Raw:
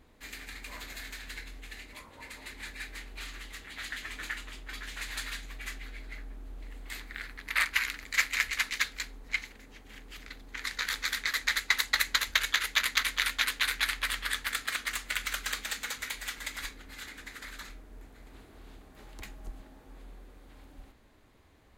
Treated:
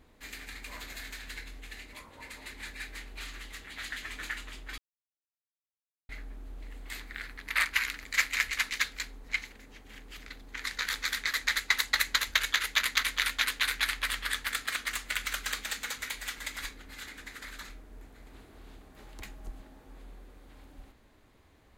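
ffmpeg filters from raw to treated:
ffmpeg -i in.wav -filter_complex "[0:a]asplit=3[link_01][link_02][link_03];[link_01]atrim=end=4.78,asetpts=PTS-STARTPTS,afade=type=out:start_time=4.776:duration=0.004:curve=hsin[link_04];[link_02]atrim=start=4.78:end=6.09,asetpts=PTS-STARTPTS,volume=0[link_05];[link_03]atrim=start=6.09,asetpts=PTS-STARTPTS,afade=type=in:duration=0.004:curve=hsin[link_06];[link_04][link_05][link_06]concat=n=3:v=0:a=1" out.wav

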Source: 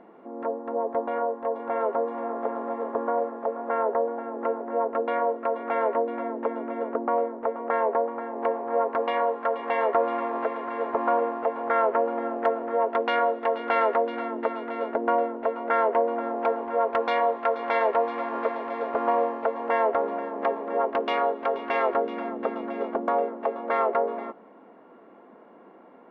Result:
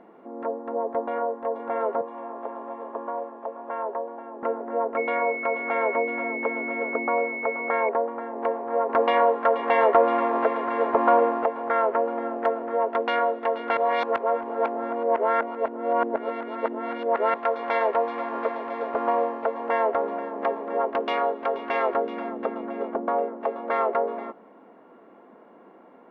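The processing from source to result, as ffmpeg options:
ffmpeg -i in.wav -filter_complex "[0:a]asettb=1/sr,asplit=3[link_01][link_02][link_03];[link_01]atrim=end=2.014[link_04];[link_02]atrim=start=2.01:end=4.43,asetpts=PTS-STARTPTS,afade=type=in:duration=0.004:curve=qsin,afade=type=out:start_time=2.416:duration=0.004:curve=qsin,highpass=frequency=280:width=0.5412,highpass=frequency=280:width=1.3066,equalizer=frequency=310:width_type=q:width=4:gain=-4,equalizer=frequency=470:width_type=q:width=4:gain=-9,equalizer=frequency=740:width_type=q:width=4:gain=-5,equalizer=frequency=1400:width_type=q:width=4:gain=-7,equalizer=frequency=2000:width_type=q:width=4:gain=-7,lowpass=frequency=3500:width=0.5412,lowpass=frequency=3500:width=1.3066[link_05];[link_03]atrim=start=4.426[link_06];[link_04][link_05]acrossfade=duration=0.004:curve1=hsin:curve2=qsin[link_07];[link_07][link_06]acrossfade=duration=0.004:curve1=qsin:curve2=hsin,asettb=1/sr,asplit=3[link_08][link_09][link_10];[link_08]atrim=end=4.974[link_11];[link_09]atrim=start=4.97:end=7.89,asetpts=PTS-STARTPTS,afade=type=in:duration=0.004:curve=qsin,afade=type=out:start_time=2.916:duration=0.004:curve=qsin,aeval=exprs='val(0)+0.0316*sin(2*PI*2200*n/s)':channel_layout=same[link_12];[link_10]atrim=start=7.886[link_13];[link_11][link_12]acrossfade=duration=0.004:curve1=hsin:curve2=qsin[link_14];[link_14][link_13]acrossfade=duration=0.004:curve1=qsin:curve2=hsin,asettb=1/sr,asplit=3[link_15][link_16][link_17];[link_15]atrim=end=8.894[link_18];[link_16]atrim=start=8.89:end=11.46,asetpts=PTS-STARTPTS,afade=type=in:duration=0.004:curve=qsin,afade=type=out:start_time=2.566:duration=0.004:curve=qsin,acontrast=31[link_19];[link_17]atrim=start=11.456[link_20];[link_18][link_19]acrossfade=duration=0.004:curve1=hsin:curve2=qsin[link_21];[link_21][link_20]acrossfade=duration=0.004:curve1=qsin:curve2=hsin,asettb=1/sr,asplit=3[link_22][link_23][link_24];[link_22]atrim=end=22.464[link_25];[link_23]atrim=start=22.46:end=23.41,asetpts=PTS-STARTPTS,afade=type=in:duration=0.004:curve=qsin,afade=type=out:start_time=0.946:duration=0.004:curve=qsin,lowpass=frequency=2200:poles=1[link_26];[link_24]atrim=start=23.406[link_27];[link_25][link_26]acrossfade=duration=0.004:curve1=hsin:curve2=qsin[link_28];[link_28][link_27]acrossfade=duration=0.004:curve1=qsin:curve2=hsin,asplit=3[link_29][link_30][link_31];[link_29]atrim=end=13.772[link_32];[link_30]atrim=start=13.768:end=17.342,asetpts=PTS-STARTPTS,areverse[link_33];[link_31]atrim=start=17.338[link_34];[link_32][link_33]acrossfade=duration=0.004:curve1=hsin:curve2=hsin[link_35];[link_35][link_34]acrossfade=duration=0.004:curve1=hsin:curve2=hsin" out.wav

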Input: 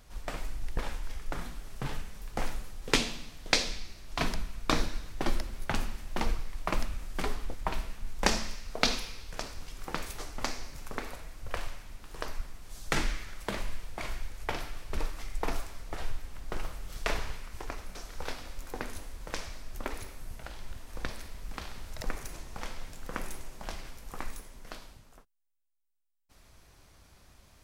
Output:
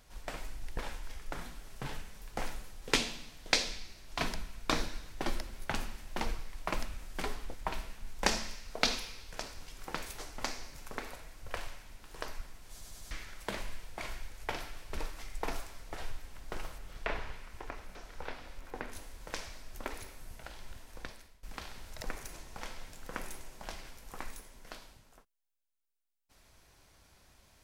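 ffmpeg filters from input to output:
ffmpeg -i in.wav -filter_complex "[0:a]asettb=1/sr,asplit=3[link_01][link_02][link_03];[link_01]atrim=end=16.784[link_04];[link_02]atrim=start=16.78:end=18.92,asetpts=PTS-STARTPTS,afade=type=in:duration=0.004:curve=qsin,afade=type=out:start_time=2.136:duration=0.004:curve=qsin,acrossover=split=3200[link_05][link_06];[link_06]acompressor=threshold=-59dB:ratio=4:attack=1:release=60[link_07];[link_05][link_07]amix=inputs=2:normalize=0[link_08];[link_03]atrim=start=18.916[link_09];[link_04][link_08]acrossfade=duration=0.004:curve1=hsin:curve2=qsin[link_10];[link_10][link_09]acrossfade=duration=0.004:curve1=qsin:curve2=hsin,asplit=6[link_11][link_12][link_13][link_14][link_15][link_16];[link_11]atrim=end=12.812[link_17];[link_12]atrim=start=12.708:end=12.812[link_18];[link_13]atrim=start=12.708:end=12.812[link_19];[link_14]atrim=start=12.708:end=12.812[link_20];[link_15]atrim=start=13.108:end=21.43,asetpts=PTS-STARTPTS,afade=type=out:start_time=7.672:duration=0.65:silence=0.1[link_21];[link_16]atrim=start=21.43,asetpts=PTS-STARTPTS,afade=type=in:duration=0.004:curve=hsin:silence=0.1[link_22];[link_17][link_18]acrossfade=duration=0.004:curve1=hsin:curve2=hsin[link_23];[link_23][link_19]acrossfade=duration=0.004:curve1=hsin:curve2=hsin[link_24];[link_24][link_20]acrossfade=duration=0.004:curve1=hsin:curve2=hsin[link_25];[link_21][link_22]concat=n=2:v=0:a=1[link_26];[link_25][link_26]acrossfade=duration=0.004:curve1=hsin:curve2=hsin,lowshelf=frequency=320:gain=-4.5,bandreject=frequency=1200:width=18,volume=-2dB" out.wav

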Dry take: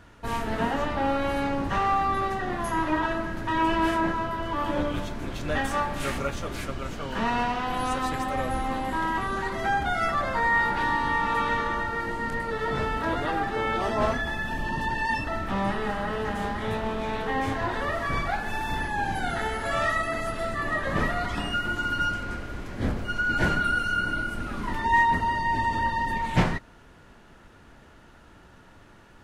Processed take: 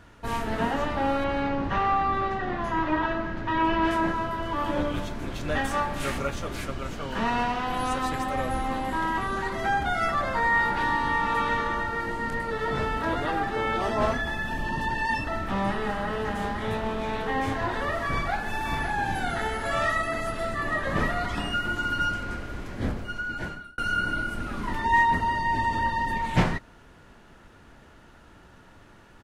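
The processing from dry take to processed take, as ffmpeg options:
ffmpeg -i in.wav -filter_complex "[0:a]asettb=1/sr,asplit=3[link_01][link_02][link_03];[link_01]atrim=end=1.244[link_04];[link_02]atrim=start=1.24:end=3.91,asetpts=PTS-STARTPTS,afade=type=in:duration=0.004:curve=qsin,afade=type=out:start_time=2.666:duration=0.004:curve=qsin,lowpass=4200[link_05];[link_03]atrim=start=3.906[link_06];[link_04][link_05]acrossfade=duration=0.004:curve1=hsin:curve2=qsin[link_07];[link_07][link_06]acrossfade=duration=0.004:curve1=qsin:curve2=hsin,asplit=2[link_08][link_09];[link_09]afade=type=in:start_time=18.09:duration=0.01,afade=type=out:start_time=18.67:duration=0.01,aecho=0:1:560|1120:0.398107|0.0597161[link_10];[link_08][link_10]amix=inputs=2:normalize=0,asplit=2[link_11][link_12];[link_11]atrim=end=23.78,asetpts=PTS-STARTPTS,afade=type=out:start_time=22.7:duration=1.08[link_13];[link_12]atrim=start=23.78,asetpts=PTS-STARTPTS,afade=type=in:duration=0.004:curve=hsin[link_14];[link_13][link_14]concat=n=2:v=0:a=1" out.wav

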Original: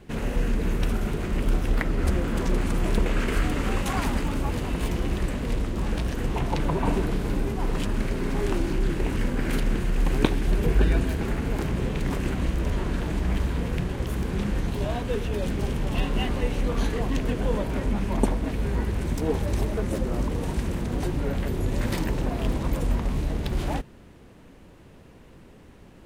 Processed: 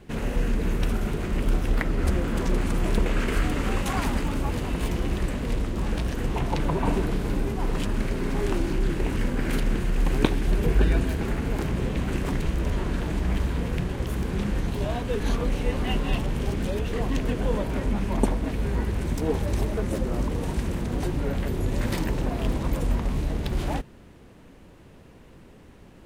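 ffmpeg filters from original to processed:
ffmpeg -i in.wav -filter_complex "[0:a]asplit=5[link_01][link_02][link_03][link_04][link_05];[link_01]atrim=end=11.962[link_06];[link_02]atrim=start=11.958:end=12.462,asetpts=PTS-STARTPTS,areverse[link_07];[link_03]atrim=start=12.458:end=15.202[link_08];[link_04]atrim=start=15.198:end=16.932,asetpts=PTS-STARTPTS,areverse[link_09];[link_05]atrim=start=16.928[link_10];[link_06][link_07]acrossfade=duration=0.004:curve1=hsin:curve2=hsin[link_11];[link_11][link_08]acrossfade=duration=0.004:curve1=hsin:curve2=hsin[link_12];[link_12][link_09]acrossfade=duration=0.004:curve1=hsin:curve2=hsin[link_13];[link_13][link_10]acrossfade=duration=0.004:curve1=hsin:curve2=hsin" out.wav

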